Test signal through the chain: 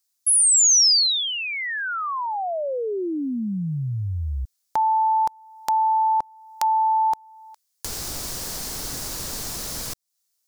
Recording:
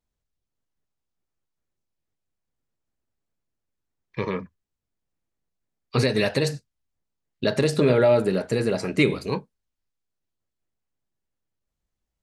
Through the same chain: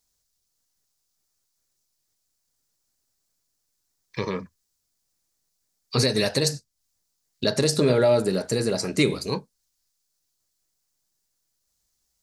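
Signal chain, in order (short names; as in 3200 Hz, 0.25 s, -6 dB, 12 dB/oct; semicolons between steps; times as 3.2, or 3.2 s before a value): resonant high shelf 3800 Hz +8.5 dB, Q 1.5; mismatched tape noise reduction encoder only; gain -1 dB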